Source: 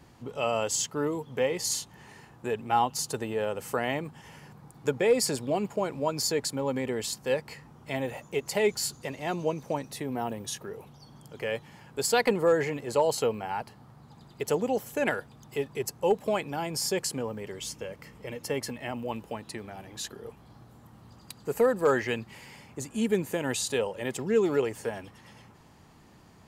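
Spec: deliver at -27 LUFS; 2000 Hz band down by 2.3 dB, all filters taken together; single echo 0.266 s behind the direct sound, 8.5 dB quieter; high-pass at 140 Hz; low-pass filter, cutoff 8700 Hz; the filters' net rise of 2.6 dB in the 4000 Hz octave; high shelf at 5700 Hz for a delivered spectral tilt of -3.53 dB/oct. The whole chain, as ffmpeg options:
-af "highpass=140,lowpass=8.7k,equalizer=f=2k:t=o:g=-4,equalizer=f=4k:t=o:g=6.5,highshelf=f=5.7k:g=-4.5,aecho=1:1:266:0.376,volume=2.5dB"

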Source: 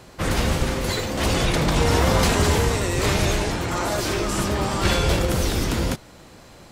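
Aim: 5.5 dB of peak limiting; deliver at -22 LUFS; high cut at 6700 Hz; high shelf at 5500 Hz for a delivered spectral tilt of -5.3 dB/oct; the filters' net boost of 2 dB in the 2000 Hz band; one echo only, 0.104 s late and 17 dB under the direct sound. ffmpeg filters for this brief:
-af "lowpass=6.7k,equalizer=f=2k:t=o:g=3.5,highshelf=f=5.5k:g=-7,alimiter=limit=-12dB:level=0:latency=1,aecho=1:1:104:0.141,volume=1dB"

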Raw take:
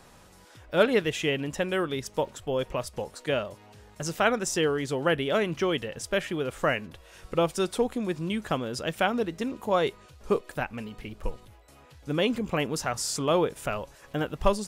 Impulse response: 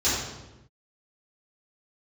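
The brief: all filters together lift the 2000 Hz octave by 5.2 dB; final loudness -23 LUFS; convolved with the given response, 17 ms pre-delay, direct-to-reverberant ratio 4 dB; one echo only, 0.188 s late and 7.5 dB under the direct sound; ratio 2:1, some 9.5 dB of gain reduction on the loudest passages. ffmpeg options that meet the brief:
-filter_complex "[0:a]equalizer=f=2k:t=o:g=7,acompressor=threshold=-33dB:ratio=2,aecho=1:1:188:0.422,asplit=2[a][b];[1:a]atrim=start_sample=2205,adelay=17[c];[b][c]afir=irnorm=-1:irlink=0,volume=-18dB[d];[a][d]amix=inputs=2:normalize=0,volume=8dB"

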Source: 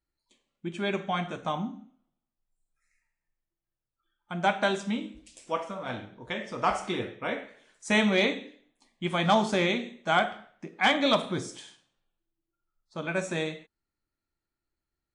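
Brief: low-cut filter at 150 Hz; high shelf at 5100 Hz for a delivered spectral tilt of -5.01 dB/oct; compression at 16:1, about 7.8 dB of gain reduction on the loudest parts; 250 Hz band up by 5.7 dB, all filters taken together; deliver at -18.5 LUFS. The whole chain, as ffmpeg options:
-af "highpass=150,equalizer=f=250:t=o:g=8.5,highshelf=f=5.1k:g=3.5,acompressor=threshold=-23dB:ratio=16,volume=12dB"

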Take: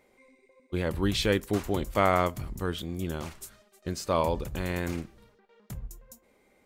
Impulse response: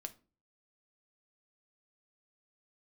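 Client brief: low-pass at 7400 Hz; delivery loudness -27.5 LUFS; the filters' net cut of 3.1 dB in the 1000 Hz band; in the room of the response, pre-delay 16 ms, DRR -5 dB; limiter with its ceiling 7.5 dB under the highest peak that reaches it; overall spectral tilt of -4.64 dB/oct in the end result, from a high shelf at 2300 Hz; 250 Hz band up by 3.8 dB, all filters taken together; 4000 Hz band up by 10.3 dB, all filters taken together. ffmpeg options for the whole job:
-filter_complex "[0:a]lowpass=7.4k,equalizer=f=250:t=o:g=5.5,equalizer=f=1k:t=o:g=-6.5,highshelf=f=2.3k:g=6.5,equalizer=f=4k:t=o:g=7.5,alimiter=limit=-15.5dB:level=0:latency=1,asplit=2[a][b];[1:a]atrim=start_sample=2205,adelay=16[c];[b][c]afir=irnorm=-1:irlink=0,volume=8.5dB[d];[a][d]amix=inputs=2:normalize=0,volume=-5dB"

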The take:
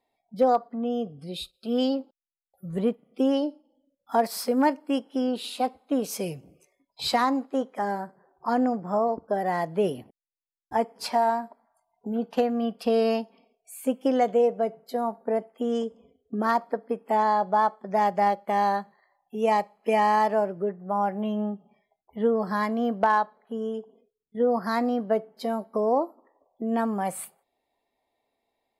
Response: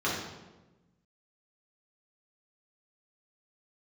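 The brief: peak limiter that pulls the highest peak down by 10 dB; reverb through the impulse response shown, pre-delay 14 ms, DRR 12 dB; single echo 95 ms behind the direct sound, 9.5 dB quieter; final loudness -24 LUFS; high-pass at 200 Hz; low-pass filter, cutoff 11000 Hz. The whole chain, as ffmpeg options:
-filter_complex "[0:a]highpass=200,lowpass=11k,alimiter=limit=-20.5dB:level=0:latency=1,aecho=1:1:95:0.335,asplit=2[a][b];[1:a]atrim=start_sample=2205,adelay=14[c];[b][c]afir=irnorm=-1:irlink=0,volume=-23dB[d];[a][d]amix=inputs=2:normalize=0,volume=6.5dB"

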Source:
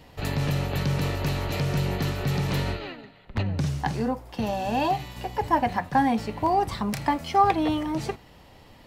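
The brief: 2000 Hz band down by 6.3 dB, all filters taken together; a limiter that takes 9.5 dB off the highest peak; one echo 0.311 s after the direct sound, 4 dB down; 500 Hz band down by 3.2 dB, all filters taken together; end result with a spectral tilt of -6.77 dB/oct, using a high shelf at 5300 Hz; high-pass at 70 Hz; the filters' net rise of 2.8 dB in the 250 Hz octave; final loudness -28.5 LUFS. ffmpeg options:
-af "highpass=70,equalizer=f=250:t=o:g=5.5,equalizer=f=500:t=o:g=-6,equalizer=f=2k:t=o:g=-7,highshelf=f=5.3k:g=-5,alimiter=limit=-20.5dB:level=0:latency=1,aecho=1:1:311:0.631"

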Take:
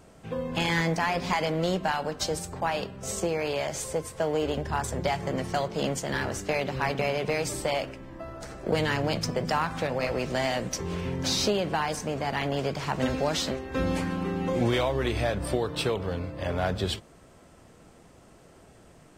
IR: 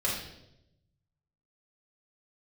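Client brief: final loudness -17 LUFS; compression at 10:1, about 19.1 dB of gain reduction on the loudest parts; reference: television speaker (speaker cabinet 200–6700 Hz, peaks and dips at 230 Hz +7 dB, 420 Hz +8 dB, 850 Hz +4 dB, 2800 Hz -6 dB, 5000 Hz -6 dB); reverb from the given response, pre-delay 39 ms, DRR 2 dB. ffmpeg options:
-filter_complex "[0:a]acompressor=threshold=-41dB:ratio=10,asplit=2[a][b];[1:a]atrim=start_sample=2205,adelay=39[c];[b][c]afir=irnorm=-1:irlink=0,volume=-10dB[d];[a][d]amix=inputs=2:normalize=0,highpass=f=200:w=0.5412,highpass=f=200:w=1.3066,equalizer=f=230:t=q:w=4:g=7,equalizer=f=420:t=q:w=4:g=8,equalizer=f=850:t=q:w=4:g=4,equalizer=f=2.8k:t=q:w=4:g=-6,equalizer=f=5k:t=q:w=4:g=-6,lowpass=f=6.7k:w=0.5412,lowpass=f=6.7k:w=1.3066,volume=24dB"

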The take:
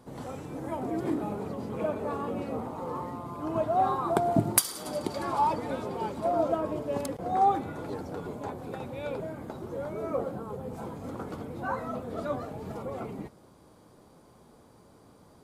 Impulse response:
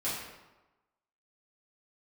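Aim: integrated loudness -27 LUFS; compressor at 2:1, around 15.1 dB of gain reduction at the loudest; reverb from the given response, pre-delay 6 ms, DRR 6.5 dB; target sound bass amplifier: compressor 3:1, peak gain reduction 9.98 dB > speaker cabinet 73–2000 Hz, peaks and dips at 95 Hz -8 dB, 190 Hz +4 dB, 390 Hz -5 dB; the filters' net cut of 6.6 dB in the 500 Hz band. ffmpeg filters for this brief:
-filter_complex "[0:a]equalizer=f=500:t=o:g=-8,acompressor=threshold=-48dB:ratio=2,asplit=2[a][b];[1:a]atrim=start_sample=2205,adelay=6[c];[b][c]afir=irnorm=-1:irlink=0,volume=-12.5dB[d];[a][d]amix=inputs=2:normalize=0,acompressor=threshold=-44dB:ratio=3,highpass=f=73:w=0.5412,highpass=f=73:w=1.3066,equalizer=f=95:t=q:w=4:g=-8,equalizer=f=190:t=q:w=4:g=4,equalizer=f=390:t=q:w=4:g=-5,lowpass=f=2k:w=0.5412,lowpass=f=2k:w=1.3066,volume=21dB"

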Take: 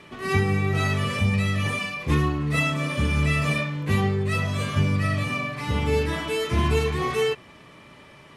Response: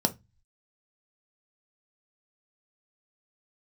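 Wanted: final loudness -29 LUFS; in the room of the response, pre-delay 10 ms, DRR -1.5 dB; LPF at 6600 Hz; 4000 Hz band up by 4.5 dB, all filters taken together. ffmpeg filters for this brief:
-filter_complex "[0:a]lowpass=6.6k,equalizer=f=4k:t=o:g=6.5,asplit=2[a][b];[1:a]atrim=start_sample=2205,adelay=10[c];[b][c]afir=irnorm=-1:irlink=0,volume=-7.5dB[d];[a][d]amix=inputs=2:normalize=0,volume=-13dB"

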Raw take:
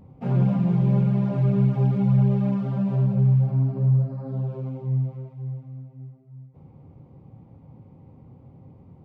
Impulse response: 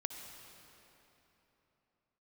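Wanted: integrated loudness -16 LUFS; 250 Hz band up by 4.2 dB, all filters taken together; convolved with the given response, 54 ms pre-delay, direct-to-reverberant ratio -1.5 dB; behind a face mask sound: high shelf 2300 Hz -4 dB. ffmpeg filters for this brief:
-filter_complex "[0:a]equalizer=f=250:t=o:g=7,asplit=2[a][b];[1:a]atrim=start_sample=2205,adelay=54[c];[b][c]afir=irnorm=-1:irlink=0,volume=2dB[d];[a][d]amix=inputs=2:normalize=0,highshelf=f=2.3k:g=-4,volume=0.5dB"

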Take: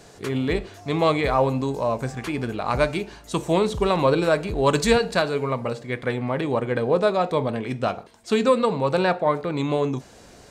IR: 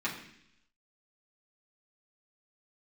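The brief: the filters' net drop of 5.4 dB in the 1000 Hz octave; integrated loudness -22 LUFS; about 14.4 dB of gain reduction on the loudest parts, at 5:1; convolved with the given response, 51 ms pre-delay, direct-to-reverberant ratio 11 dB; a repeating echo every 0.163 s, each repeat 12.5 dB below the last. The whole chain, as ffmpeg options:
-filter_complex "[0:a]equalizer=f=1k:t=o:g=-7,acompressor=threshold=-31dB:ratio=5,aecho=1:1:163|326|489:0.237|0.0569|0.0137,asplit=2[a][b];[1:a]atrim=start_sample=2205,adelay=51[c];[b][c]afir=irnorm=-1:irlink=0,volume=-17.5dB[d];[a][d]amix=inputs=2:normalize=0,volume=12dB"

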